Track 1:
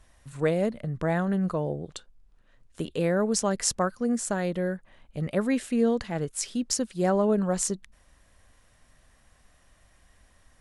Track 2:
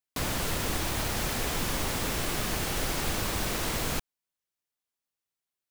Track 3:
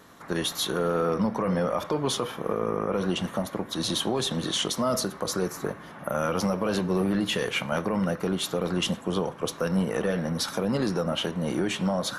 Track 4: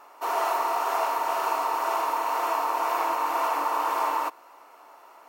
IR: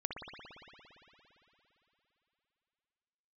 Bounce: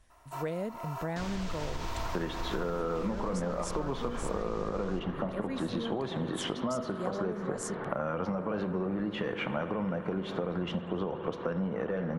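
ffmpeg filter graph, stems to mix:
-filter_complex "[0:a]volume=-6dB,asplit=2[a][b];[1:a]lowpass=f=6.7k:w=0.5412,lowpass=f=6.7k:w=1.3066,asubboost=boost=10:cutoff=78,acompressor=threshold=-19dB:ratio=6,adelay=1000,volume=-10.5dB,asplit=2[c][d];[d]volume=-3.5dB[e];[2:a]lowpass=1.9k,adelay=1850,volume=2.5dB,asplit=2[f][g];[g]volume=-8dB[h];[3:a]aecho=1:1:3:0.82,adelay=100,volume=-13.5dB[i];[b]apad=whole_len=237658[j];[i][j]sidechaincompress=threshold=-37dB:ratio=8:attack=16:release=347[k];[4:a]atrim=start_sample=2205[l];[e][h]amix=inputs=2:normalize=0[m];[m][l]afir=irnorm=-1:irlink=0[n];[a][c][f][k][n]amix=inputs=5:normalize=0,acompressor=threshold=-30dB:ratio=6"

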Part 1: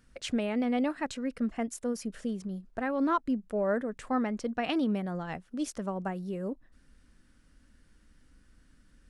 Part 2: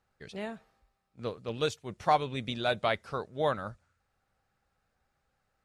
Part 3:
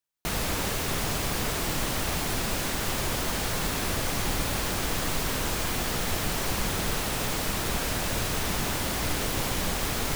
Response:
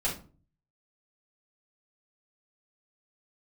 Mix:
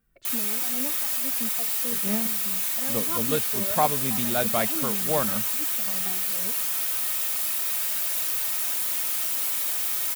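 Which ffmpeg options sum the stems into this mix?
-filter_complex "[0:a]asplit=2[a][b];[b]adelay=2.1,afreqshift=-2[c];[a][c]amix=inputs=2:normalize=1,volume=-5.5dB[d];[1:a]equalizer=f=210:w=4:g=12.5,adelay=1700,volume=2.5dB[e];[2:a]aderivative,aecho=1:1:3.2:0.51,volume=2.5dB,asplit=2[f][g];[g]volume=-6.5dB[h];[3:a]atrim=start_sample=2205[i];[h][i]afir=irnorm=-1:irlink=0[j];[d][e][f][j]amix=inputs=4:normalize=0,equalizer=f=5.7k:t=o:w=1.7:g=-6.5"

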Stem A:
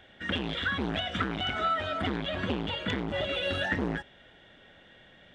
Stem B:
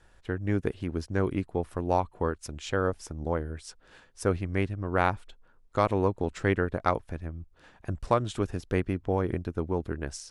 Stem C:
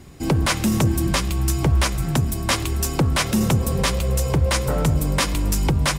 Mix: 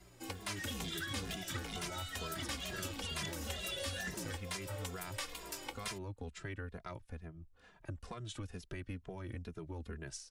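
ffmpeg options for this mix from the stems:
-filter_complex "[0:a]aexciter=amount=6.9:drive=4.7:freq=4.6k,adelay=350,volume=-0.5dB[a];[1:a]dynaudnorm=f=440:g=3:m=15dB,alimiter=limit=-10dB:level=0:latency=1:release=13,volume=-11.5dB[b];[2:a]highpass=f=380:w=0.5412,highpass=f=380:w=1.3066,aeval=exprs='val(0)+0.00398*(sin(2*PI*60*n/s)+sin(2*PI*2*60*n/s)/2+sin(2*PI*3*60*n/s)/3+sin(2*PI*4*60*n/s)/4+sin(2*PI*5*60*n/s)/5)':c=same,flanger=delay=6.4:depth=6.6:regen=-52:speed=0.63:shape=triangular,volume=-4.5dB[c];[a][b][c]amix=inputs=3:normalize=0,acrossover=split=180|1900|5000[d][e][f][g];[d]acompressor=threshold=-42dB:ratio=4[h];[e]acompressor=threshold=-44dB:ratio=4[i];[f]acompressor=threshold=-41dB:ratio=4[j];[g]acompressor=threshold=-44dB:ratio=4[k];[h][i][j][k]amix=inputs=4:normalize=0,asplit=2[l][m];[m]adelay=2.5,afreqshift=-2.2[n];[l][n]amix=inputs=2:normalize=1"

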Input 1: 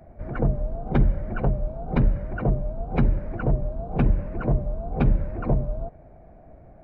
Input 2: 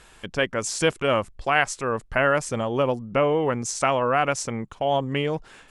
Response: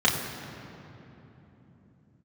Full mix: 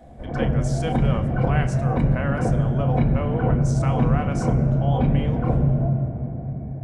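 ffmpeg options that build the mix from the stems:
-filter_complex "[0:a]equalizer=f=1.3k:w=4.6:g=-7,alimiter=limit=-15.5dB:level=0:latency=1,volume=-2dB,asplit=2[a][b];[b]volume=-10dB[c];[1:a]agate=range=-6dB:threshold=-45dB:ratio=16:detection=peak,volume=-10.5dB,asplit=2[d][e];[e]volume=-20.5dB[f];[2:a]atrim=start_sample=2205[g];[c][f]amix=inputs=2:normalize=0[h];[h][g]afir=irnorm=-1:irlink=0[i];[a][d][i]amix=inputs=3:normalize=0"

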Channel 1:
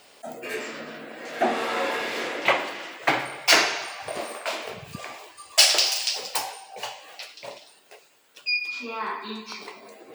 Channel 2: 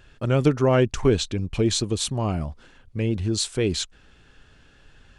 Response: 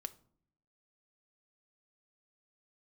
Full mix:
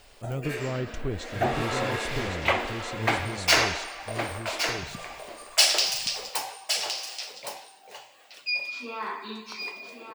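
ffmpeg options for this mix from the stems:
-filter_complex "[0:a]bandreject=f=55.33:t=h:w=4,bandreject=f=110.66:t=h:w=4,bandreject=f=165.99:t=h:w=4,volume=-3dB,asplit=2[a][b];[b]volume=-8dB[c];[1:a]lowshelf=f=100:g=11,volume=-14.5dB,asplit=2[d][e];[e]volume=-3.5dB[f];[c][f]amix=inputs=2:normalize=0,aecho=0:1:1114:1[g];[a][d][g]amix=inputs=3:normalize=0"

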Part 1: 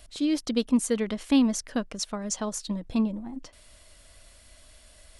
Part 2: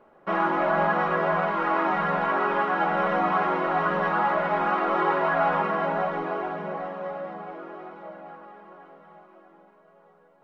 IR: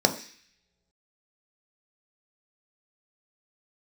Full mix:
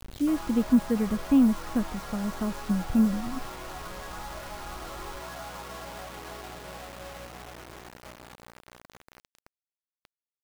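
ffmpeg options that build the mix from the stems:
-filter_complex "[0:a]bass=f=250:g=15,treble=f=4k:g=-15,volume=-5.5dB[a];[1:a]acrossover=split=310|940[b][c][d];[b]acompressor=threshold=-46dB:ratio=4[e];[c]acompressor=threshold=-36dB:ratio=4[f];[d]acompressor=threshold=-37dB:ratio=4[g];[e][f][g]amix=inputs=3:normalize=0,volume=-9dB[h];[a][h]amix=inputs=2:normalize=0,acrossover=split=2800[i][j];[j]acompressor=threshold=-57dB:ratio=4:attack=1:release=60[k];[i][k]amix=inputs=2:normalize=0,aeval=exprs='val(0)+0.00398*(sin(2*PI*60*n/s)+sin(2*PI*2*60*n/s)/2+sin(2*PI*3*60*n/s)/3+sin(2*PI*4*60*n/s)/4+sin(2*PI*5*60*n/s)/5)':c=same,acrusher=bits=6:mix=0:aa=0.000001"

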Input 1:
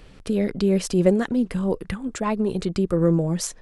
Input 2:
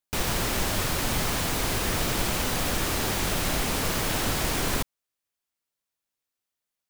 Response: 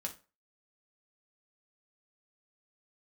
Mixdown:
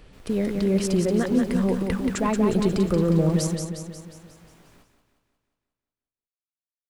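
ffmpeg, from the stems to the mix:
-filter_complex "[0:a]highshelf=f=6k:g=7,dynaudnorm=f=480:g=3:m=11.5dB,alimiter=limit=-11.5dB:level=0:latency=1:release=76,volume=-2.5dB,asplit=3[a][b][c];[b]volume=-5.5dB[d];[1:a]flanger=delay=17:depth=4.2:speed=0.41,volume=-14dB,asplit=2[e][f];[f]volume=-20.5dB[g];[c]apad=whole_len=303973[h];[e][h]sidechaingate=range=-11dB:threshold=-34dB:ratio=16:detection=peak[i];[d][g]amix=inputs=2:normalize=0,aecho=0:1:179|358|537|716|895|1074|1253|1432:1|0.55|0.303|0.166|0.0915|0.0503|0.0277|0.0152[j];[a][i][j]amix=inputs=3:normalize=0,highshelf=f=3.8k:g=-7"

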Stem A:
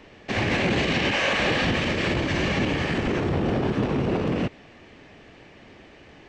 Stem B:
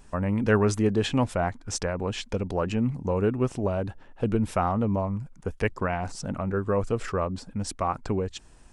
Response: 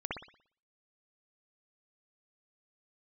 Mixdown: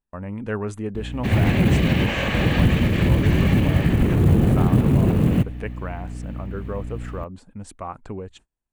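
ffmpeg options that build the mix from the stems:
-filter_complex "[0:a]bass=f=250:g=15,treble=f=4k:g=3,acrusher=bits=7:mode=log:mix=0:aa=0.000001,aeval=exprs='val(0)+0.0398*(sin(2*PI*60*n/s)+sin(2*PI*2*60*n/s)/2+sin(2*PI*3*60*n/s)/3+sin(2*PI*4*60*n/s)/4+sin(2*PI*5*60*n/s)/5)':c=same,adelay=950,volume=-2.5dB[a];[1:a]volume=-5.5dB[b];[a][b]amix=inputs=2:normalize=0,equalizer=f=5.3k:t=o:w=0.59:g=-10.5,agate=range=-29dB:threshold=-49dB:ratio=16:detection=peak"

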